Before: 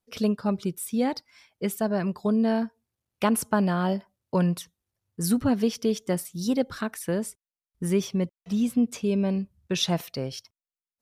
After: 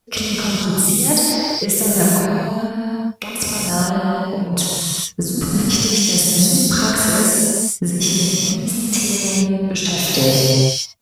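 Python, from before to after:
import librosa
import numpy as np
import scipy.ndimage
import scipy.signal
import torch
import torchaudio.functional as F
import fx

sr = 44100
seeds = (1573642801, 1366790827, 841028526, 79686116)

y = fx.dynamic_eq(x, sr, hz=7400.0, q=0.83, threshold_db=-50.0, ratio=4.0, max_db=7)
y = fx.over_compress(y, sr, threshold_db=-29.0, ratio=-0.5)
y = 10.0 ** (-14.0 / 20.0) * np.tanh(y / 10.0 ** (-14.0 / 20.0))
y = fx.rev_gated(y, sr, seeds[0], gate_ms=480, shape='flat', drr_db=-7.0)
y = y * librosa.db_to_amplitude(7.5)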